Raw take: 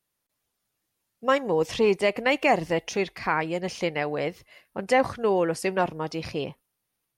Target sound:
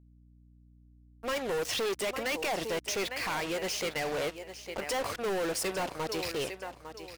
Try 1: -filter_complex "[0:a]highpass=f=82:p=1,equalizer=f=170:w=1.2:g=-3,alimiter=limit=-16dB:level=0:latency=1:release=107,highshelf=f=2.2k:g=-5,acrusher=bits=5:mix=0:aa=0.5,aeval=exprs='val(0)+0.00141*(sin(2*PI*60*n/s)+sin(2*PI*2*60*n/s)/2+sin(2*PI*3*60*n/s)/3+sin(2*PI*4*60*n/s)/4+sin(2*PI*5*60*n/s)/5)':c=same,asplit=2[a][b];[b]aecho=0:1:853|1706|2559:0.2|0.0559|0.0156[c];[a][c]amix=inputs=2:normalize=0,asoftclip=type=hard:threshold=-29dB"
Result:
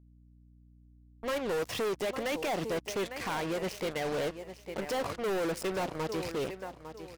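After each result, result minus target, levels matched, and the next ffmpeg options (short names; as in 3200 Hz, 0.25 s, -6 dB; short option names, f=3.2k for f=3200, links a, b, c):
125 Hz band +4.5 dB; 4000 Hz band -4.0 dB
-filter_complex "[0:a]highpass=f=82:p=1,equalizer=f=170:w=1.2:g=-10,alimiter=limit=-16dB:level=0:latency=1:release=107,highshelf=f=2.2k:g=-5,acrusher=bits=5:mix=0:aa=0.5,aeval=exprs='val(0)+0.00141*(sin(2*PI*60*n/s)+sin(2*PI*2*60*n/s)/2+sin(2*PI*3*60*n/s)/3+sin(2*PI*4*60*n/s)/4+sin(2*PI*5*60*n/s)/5)':c=same,asplit=2[a][b];[b]aecho=0:1:853|1706|2559:0.2|0.0559|0.0156[c];[a][c]amix=inputs=2:normalize=0,asoftclip=type=hard:threshold=-29dB"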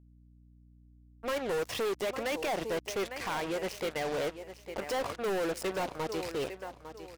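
4000 Hz band -3.5 dB
-filter_complex "[0:a]highpass=f=82:p=1,equalizer=f=170:w=1.2:g=-10,alimiter=limit=-16dB:level=0:latency=1:release=107,highshelf=f=2.2k:g=6,acrusher=bits=5:mix=0:aa=0.5,aeval=exprs='val(0)+0.00141*(sin(2*PI*60*n/s)+sin(2*PI*2*60*n/s)/2+sin(2*PI*3*60*n/s)/3+sin(2*PI*4*60*n/s)/4+sin(2*PI*5*60*n/s)/5)':c=same,asplit=2[a][b];[b]aecho=0:1:853|1706|2559:0.2|0.0559|0.0156[c];[a][c]amix=inputs=2:normalize=0,asoftclip=type=hard:threshold=-29dB"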